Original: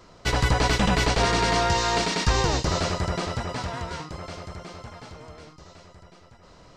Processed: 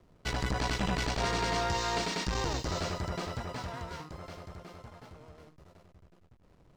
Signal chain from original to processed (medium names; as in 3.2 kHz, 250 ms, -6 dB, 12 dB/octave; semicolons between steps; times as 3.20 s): hysteresis with a dead band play -43 dBFS; transformer saturation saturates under 250 Hz; trim -7.5 dB